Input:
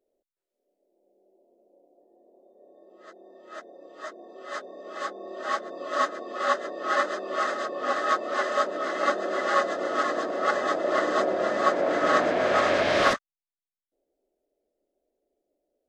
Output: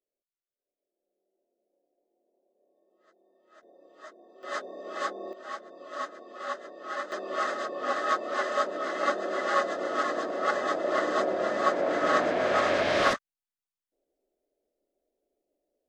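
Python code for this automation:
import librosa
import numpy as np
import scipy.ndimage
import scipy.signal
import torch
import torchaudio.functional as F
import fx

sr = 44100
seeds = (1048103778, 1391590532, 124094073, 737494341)

y = fx.gain(x, sr, db=fx.steps((0.0, -16.5), (3.63, -9.0), (4.43, 1.0), (5.33, -10.0), (7.12, -2.5)))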